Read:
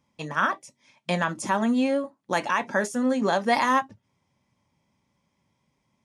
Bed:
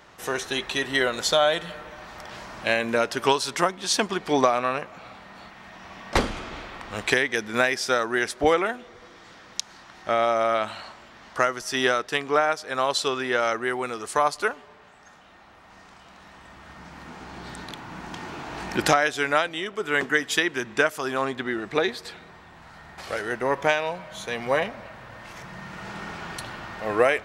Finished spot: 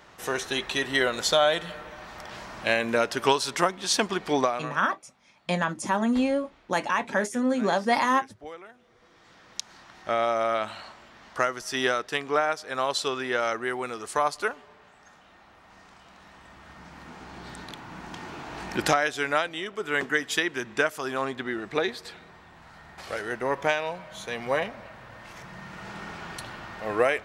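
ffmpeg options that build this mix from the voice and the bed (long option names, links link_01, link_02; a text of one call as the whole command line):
ffmpeg -i stem1.wav -i stem2.wav -filter_complex "[0:a]adelay=4400,volume=-1dB[link_01];[1:a]volume=17.5dB,afade=type=out:start_time=4.25:duration=0.55:silence=0.0944061,afade=type=in:start_time=8.73:duration=1.03:silence=0.11885[link_02];[link_01][link_02]amix=inputs=2:normalize=0" out.wav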